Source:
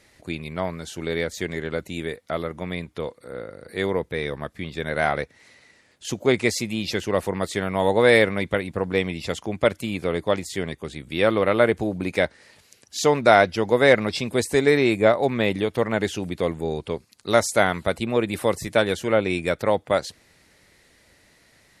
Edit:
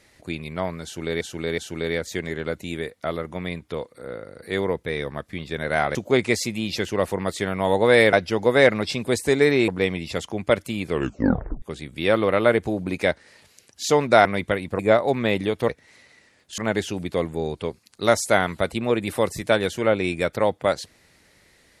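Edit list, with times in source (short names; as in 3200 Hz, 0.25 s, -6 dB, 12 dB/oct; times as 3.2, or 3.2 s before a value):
0.84–1.21 loop, 3 plays
5.21–6.1 move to 15.84
8.28–8.82 swap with 13.39–14.94
10.02 tape stop 0.74 s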